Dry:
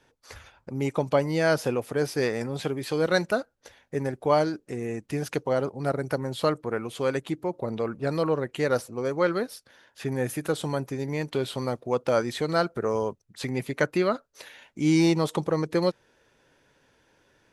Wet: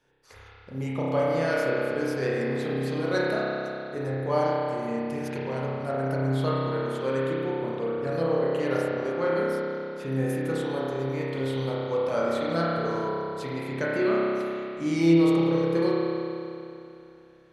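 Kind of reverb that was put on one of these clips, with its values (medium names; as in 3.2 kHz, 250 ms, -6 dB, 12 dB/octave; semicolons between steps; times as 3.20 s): spring tank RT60 2.8 s, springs 30 ms, chirp 25 ms, DRR -7 dB; trim -8 dB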